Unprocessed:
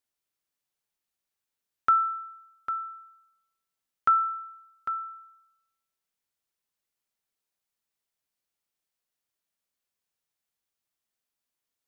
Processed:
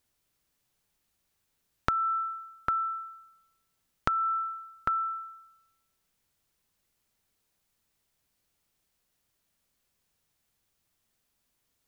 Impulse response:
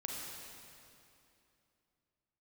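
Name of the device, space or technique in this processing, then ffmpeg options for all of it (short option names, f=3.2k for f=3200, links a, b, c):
serial compression, leveller first: -af "acompressor=threshold=-27dB:ratio=6,acompressor=threshold=-36dB:ratio=4,lowshelf=f=210:g=12,volume=9dB"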